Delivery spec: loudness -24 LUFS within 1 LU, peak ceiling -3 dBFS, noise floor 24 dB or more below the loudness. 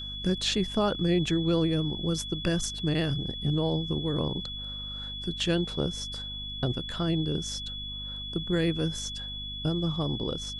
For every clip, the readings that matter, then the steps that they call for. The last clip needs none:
hum 50 Hz; harmonics up to 250 Hz; hum level -40 dBFS; steady tone 3400 Hz; tone level -36 dBFS; loudness -29.5 LUFS; peak -14.5 dBFS; loudness target -24.0 LUFS
-> de-hum 50 Hz, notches 5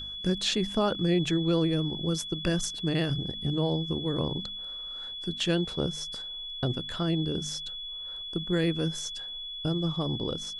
hum none; steady tone 3400 Hz; tone level -36 dBFS
-> notch 3400 Hz, Q 30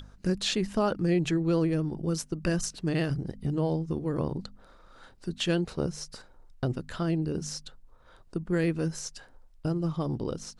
steady tone none; loudness -30.0 LUFS; peak -15.5 dBFS; loudness target -24.0 LUFS
-> gain +6 dB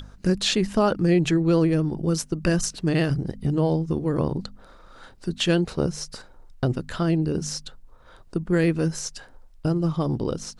loudness -24.0 LUFS; peak -9.5 dBFS; noise floor -50 dBFS

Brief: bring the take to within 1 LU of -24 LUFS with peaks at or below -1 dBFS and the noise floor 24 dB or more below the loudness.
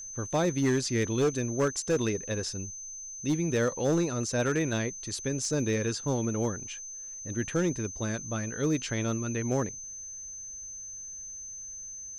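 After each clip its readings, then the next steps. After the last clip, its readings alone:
clipped 0.8%; flat tops at -20.5 dBFS; steady tone 6200 Hz; tone level -39 dBFS; loudness -30.5 LUFS; peak -20.5 dBFS; loudness target -24.0 LUFS
-> clip repair -20.5 dBFS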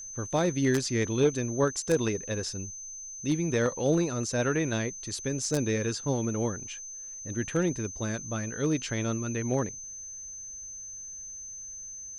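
clipped 0.0%; steady tone 6200 Hz; tone level -39 dBFS
-> notch 6200 Hz, Q 30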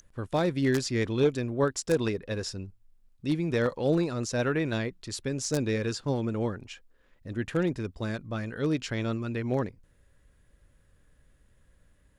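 steady tone none; loudness -29.5 LUFS; peak -11.5 dBFS; loudness target -24.0 LUFS
-> gain +5.5 dB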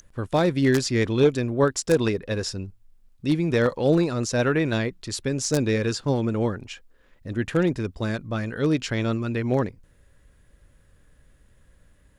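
loudness -24.0 LUFS; peak -6.0 dBFS; noise floor -59 dBFS

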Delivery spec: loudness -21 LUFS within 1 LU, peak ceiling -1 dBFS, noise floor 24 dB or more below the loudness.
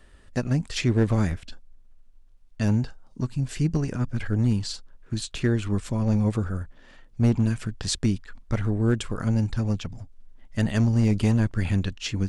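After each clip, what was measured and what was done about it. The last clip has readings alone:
clipped 0.4%; flat tops at -13.5 dBFS; loudness -26.0 LUFS; peak -13.5 dBFS; loudness target -21.0 LUFS
-> clip repair -13.5 dBFS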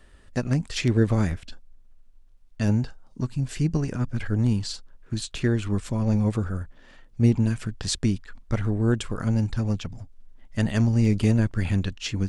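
clipped 0.0%; loudness -25.5 LUFS; peak -8.0 dBFS; loudness target -21.0 LUFS
-> gain +4.5 dB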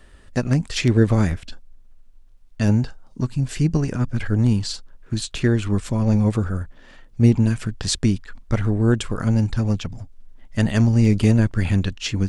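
loudness -21.0 LUFS; peak -3.5 dBFS; noise floor -48 dBFS

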